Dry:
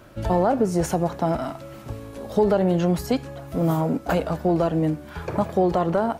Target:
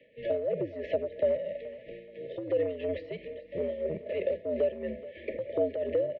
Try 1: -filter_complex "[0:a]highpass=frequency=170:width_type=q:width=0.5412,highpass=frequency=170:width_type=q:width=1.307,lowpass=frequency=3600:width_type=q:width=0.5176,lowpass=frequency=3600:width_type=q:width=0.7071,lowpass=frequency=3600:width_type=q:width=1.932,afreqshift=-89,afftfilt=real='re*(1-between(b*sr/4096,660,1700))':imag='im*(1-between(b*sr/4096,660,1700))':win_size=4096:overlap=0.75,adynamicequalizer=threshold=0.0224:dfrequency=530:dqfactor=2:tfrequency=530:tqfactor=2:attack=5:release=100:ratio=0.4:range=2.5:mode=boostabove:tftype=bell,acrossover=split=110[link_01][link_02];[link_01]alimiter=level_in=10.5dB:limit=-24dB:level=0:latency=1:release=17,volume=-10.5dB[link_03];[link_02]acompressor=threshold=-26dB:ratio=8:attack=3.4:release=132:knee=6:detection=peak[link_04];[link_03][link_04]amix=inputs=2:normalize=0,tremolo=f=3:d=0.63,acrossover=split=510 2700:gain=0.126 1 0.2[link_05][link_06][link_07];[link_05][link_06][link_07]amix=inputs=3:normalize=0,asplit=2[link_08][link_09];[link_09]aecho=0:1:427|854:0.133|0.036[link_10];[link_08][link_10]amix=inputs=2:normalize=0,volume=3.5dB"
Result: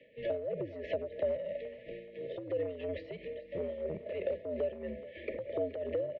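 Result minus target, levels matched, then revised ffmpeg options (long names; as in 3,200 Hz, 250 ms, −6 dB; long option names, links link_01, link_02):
downward compressor: peak gain reduction +6.5 dB
-filter_complex "[0:a]highpass=frequency=170:width_type=q:width=0.5412,highpass=frequency=170:width_type=q:width=1.307,lowpass=frequency=3600:width_type=q:width=0.5176,lowpass=frequency=3600:width_type=q:width=0.7071,lowpass=frequency=3600:width_type=q:width=1.932,afreqshift=-89,afftfilt=real='re*(1-between(b*sr/4096,660,1700))':imag='im*(1-between(b*sr/4096,660,1700))':win_size=4096:overlap=0.75,adynamicequalizer=threshold=0.0224:dfrequency=530:dqfactor=2:tfrequency=530:tqfactor=2:attack=5:release=100:ratio=0.4:range=2.5:mode=boostabove:tftype=bell,acrossover=split=110[link_01][link_02];[link_01]alimiter=level_in=10.5dB:limit=-24dB:level=0:latency=1:release=17,volume=-10.5dB[link_03];[link_02]acompressor=threshold=-18.5dB:ratio=8:attack=3.4:release=132:knee=6:detection=peak[link_04];[link_03][link_04]amix=inputs=2:normalize=0,tremolo=f=3:d=0.63,acrossover=split=510 2700:gain=0.126 1 0.2[link_05][link_06][link_07];[link_05][link_06][link_07]amix=inputs=3:normalize=0,asplit=2[link_08][link_09];[link_09]aecho=0:1:427|854:0.133|0.036[link_10];[link_08][link_10]amix=inputs=2:normalize=0,volume=3.5dB"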